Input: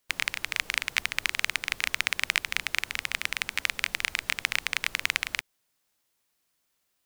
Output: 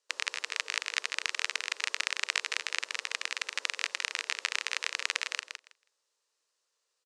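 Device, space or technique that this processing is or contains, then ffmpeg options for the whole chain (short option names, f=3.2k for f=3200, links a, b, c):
phone speaker on a table: -af "highpass=f=450:w=0.5412,highpass=f=450:w=1.3066,equalizer=f=460:t=q:w=4:g=6,equalizer=f=730:t=q:w=4:g=-10,equalizer=f=1.5k:t=q:w=4:g=-4,equalizer=f=2.2k:t=q:w=4:g=-8,equalizer=f=3.3k:t=q:w=4:g=-5,lowpass=f=7.8k:w=0.5412,lowpass=f=7.8k:w=1.3066,aecho=1:1:161|322|483:0.447|0.067|0.0101"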